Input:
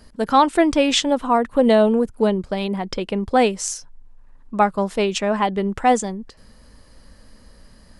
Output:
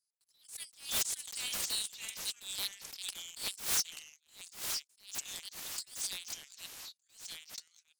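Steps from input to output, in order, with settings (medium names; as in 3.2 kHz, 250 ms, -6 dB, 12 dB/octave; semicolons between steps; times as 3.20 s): inverse Chebyshev high-pass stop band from 980 Hz, stop band 80 dB; gate -54 dBFS, range -36 dB; in parallel at +2 dB: compression, threshold -47 dBFS, peak gain reduction 22 dB; on the sum: waveshaping leveller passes 2; sine folder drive 14 dB, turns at -15.5 dBFS; ever faster or slower copies 505 ms, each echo -2 st, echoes 3, each echo -6 dB; attacks held to a fixed rise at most 150 dB/s; trim -9 dB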